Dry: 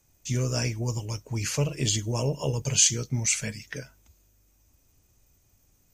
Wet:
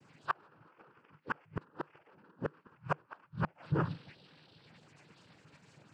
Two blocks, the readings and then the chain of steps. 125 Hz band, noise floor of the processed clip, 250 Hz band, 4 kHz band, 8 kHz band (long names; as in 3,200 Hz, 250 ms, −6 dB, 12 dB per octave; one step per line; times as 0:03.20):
−13.0 dB, −69 dBFS, −9.0 dB, −27.0 dB, below −40 dB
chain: frequency axis turned over on the octave scale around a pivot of 400 Hz
high-shelf EQ 2,400 Hz −12 dB
hum removal 263.1 Hz, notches 30
soft clipping −29 dBFS, distortion −12 dB
downward compressor 16 to 1, threshold −38 dBFS, peak gain reduction 8 dB
cochlear-implant simulation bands 8
gate with flip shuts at −34 dBFS, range −36 dB
parametric band 150 Hz +6 dB 0.27 octaves
level +15 dB